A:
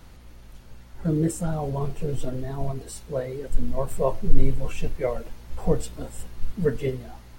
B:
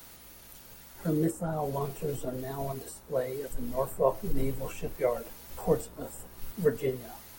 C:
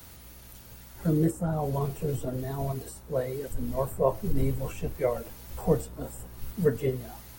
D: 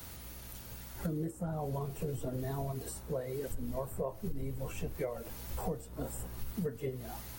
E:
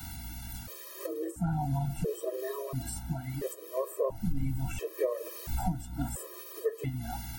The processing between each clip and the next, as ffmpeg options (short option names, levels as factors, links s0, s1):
-filter_complex "[0:a]aemphasis=mode=production:type=bsi,acrossover=split=170|640|1500[s0][s1][s2][s3];[s3]acompressor=threshold=0.00562:ratio=6[s4];[s0][s1][s2][s4]amix=inputs=4:normalize=0"
-af "equalizer=f=77:t=o:w=2.2:g=11"
-af "acompressor=threshold=0.02:ratio=10,volume=1.12"
-af "afftfilt=real='re*gt(sin(2*PI*0.73*pts/sr)*(1-2*mod(floor(b*sr/1024/330),2)),0)':imag='im*gt(sin(2*PI*0.73*pts/sr)*(1-2*mod(floor(b*sr/1024/330),2)),0)':win_size=1024:overlap=0.75,volume=2.37"